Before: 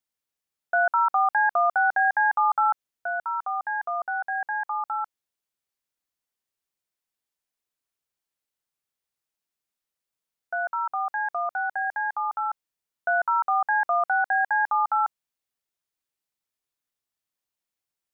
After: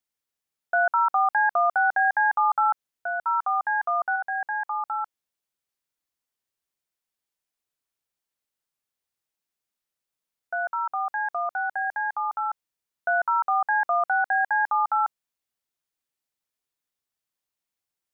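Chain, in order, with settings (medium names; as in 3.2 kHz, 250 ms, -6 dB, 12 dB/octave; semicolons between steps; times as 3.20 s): 3.20–4.16 s: dynamic bell 1.2 kHz, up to +5 dB, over -39 dBFS, Q 0.92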